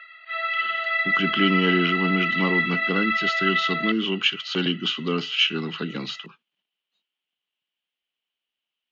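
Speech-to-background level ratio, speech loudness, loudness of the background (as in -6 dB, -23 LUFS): -1.5 dB, -24.5 LUFS, -23.0 LUFS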